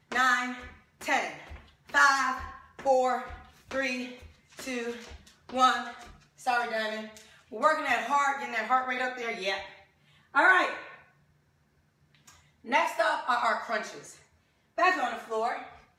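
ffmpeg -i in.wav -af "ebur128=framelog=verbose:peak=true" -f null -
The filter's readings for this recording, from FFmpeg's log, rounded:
Integrated loudness:
  I:         -27.8 LUFS
  Threshold: -39.5 LUFS
Loudness range:
  LRA:         3.8 LU
  Threshold: -49.5 LUFS
  LRA low:   -31.4 LUFS
  LRA high:  -27.6 LUFS
True peak:
  Peak:       -9.9 dBFS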